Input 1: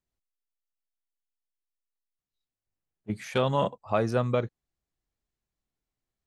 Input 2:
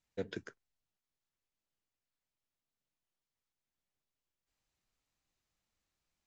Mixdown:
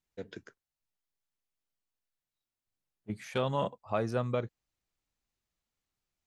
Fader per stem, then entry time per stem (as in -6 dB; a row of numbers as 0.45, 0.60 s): -5.5, -3.5 dB; 0.00, 0.00 s